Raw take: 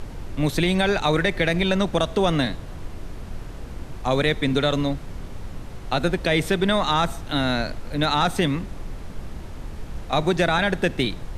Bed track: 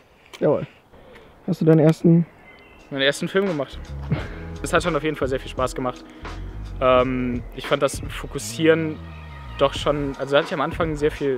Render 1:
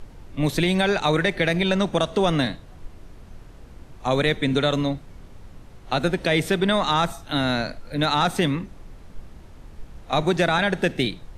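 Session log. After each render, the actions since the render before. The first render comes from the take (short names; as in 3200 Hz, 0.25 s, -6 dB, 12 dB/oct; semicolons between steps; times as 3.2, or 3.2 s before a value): noise print and reduce 9 dB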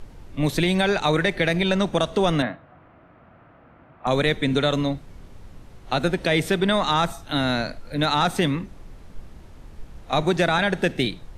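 2.42–4.07 speaker cabinet 150–2400 Hz, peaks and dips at 200 Hz -4 dB, 410 Hz -8 dB, 670 Hz +6 dB, 1300 Hz +7 dB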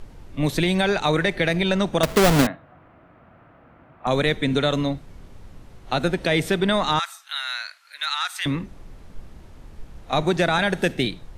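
2.03–2.47 half-waves squared off; 6.99–8.46 HPF 1300 Hz 24 dB/oct; 10.52–10.94 high shelf 11000 Hz -> 6800 Hz +9 dB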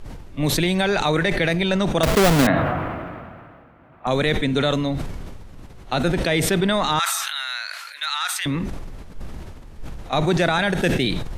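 sustainer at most 28 dB/s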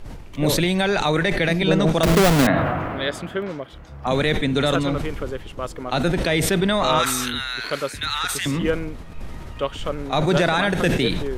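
add bed track -6.5 dB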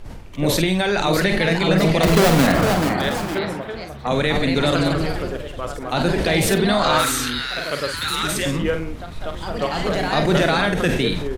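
doubler 49 ms -8 dB; echoes that change speed 0.694 s, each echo +2 st, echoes 2, each echo -6 dB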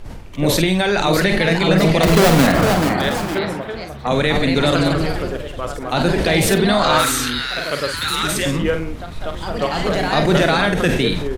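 gain +2.5 dB; limiter -3 dBFS, peak gain reduction 2 dB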